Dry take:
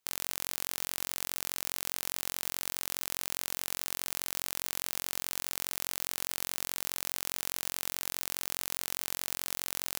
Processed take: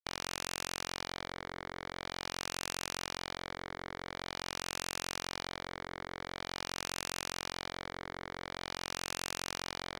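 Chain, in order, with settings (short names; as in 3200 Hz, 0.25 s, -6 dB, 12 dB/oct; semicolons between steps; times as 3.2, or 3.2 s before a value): bell 9800 Hz -14 dB 2.9 oct; bit-crush 6-bit; LFO low-pass sine 0.46 Hz 410–1600 Hz; Butterworth band-stop 2600 Hz, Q 2.5; spectral compressor 10:1; gain +9 dB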